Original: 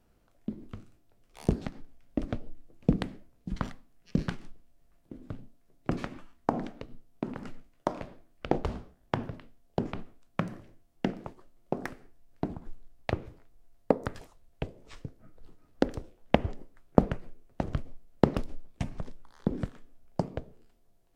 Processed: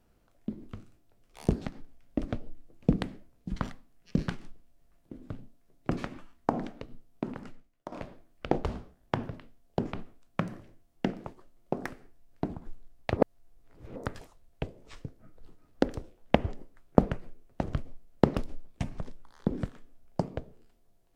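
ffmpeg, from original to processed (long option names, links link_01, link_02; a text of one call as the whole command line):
ffmpeg -i in.wav -filter_complex "[0:a]asplit=4[link_01][link_02][link_03][link_04];[link_01]atrim=end=7.92,asetpts=PTS-STARTPTS,afade=type=out:start_time=7.3:duration=0.62:curve=qua:silence=0.237137[link_05];[link_02]atrim=start=7.92:end=13.172,asetpts=PTS-STARTPTS,afade=type=in:duration=0.004:curve=hsin:silence=0.237137[link_06];[link_03]atrim=start=13.168:end=13.962,asetpts=PTS-STARTPTS,areverse[link_07];[link_04]atrim=start=13.958[link_08];[link_05][link_06]concat=n=2:v=0:a=1[link_09];[link_09][link_07]acrossfade=duration=0.004:curve1=hsin:curve2=hsin[link_10];[link_10][link_08]acrossfade=duration=0.004:curve1=hsin:curve2=hsin" out.wav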